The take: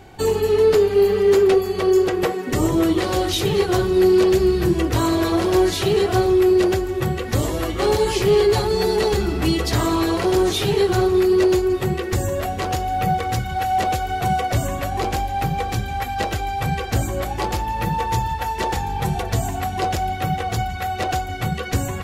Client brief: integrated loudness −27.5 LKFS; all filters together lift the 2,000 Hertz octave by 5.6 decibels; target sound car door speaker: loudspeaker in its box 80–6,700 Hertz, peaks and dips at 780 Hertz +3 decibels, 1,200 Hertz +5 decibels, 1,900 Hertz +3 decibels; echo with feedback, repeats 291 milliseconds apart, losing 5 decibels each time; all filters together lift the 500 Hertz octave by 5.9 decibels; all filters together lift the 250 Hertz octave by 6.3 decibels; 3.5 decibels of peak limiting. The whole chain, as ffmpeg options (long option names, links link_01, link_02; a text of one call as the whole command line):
ffmpeg -i in.wav -af "equalizer=frequency=250:width_type=o:gain=8,equalizer=frequency=500:width_type=o:gain=4,equalizer=frequency=2000:width_type=o:gain=4,alimiter=limit=-6dB:level=0:latency=1,highpass=80,equalizer=frequency=780:width_type=q:width=4:gain=3,equalizer=frequency=1200:width_type=q:width=4:gain=5,equalizer=frequency=1900:width_type=q:width=4:gain=3,lowpass=frequency=6700:width=0.5412,lowpass=frequency=6700:width=1.3066,aecho=1:1:291|582|873|1164|1455|1746|2037:0.562|0.315|0.176|0.0988|0.0553|0.031|0.0173,volume=-13.5dB" out.wav